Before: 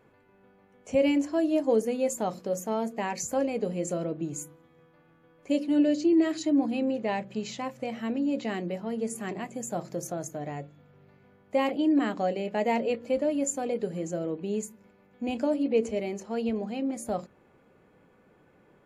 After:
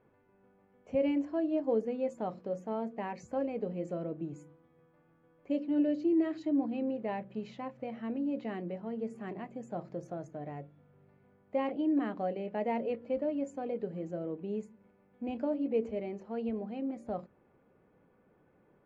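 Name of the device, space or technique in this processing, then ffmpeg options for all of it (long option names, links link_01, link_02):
phone in a pocket: -af "lowpass=3800,highshelf=frequency=2500:gain=-11,volume=-5.5dB"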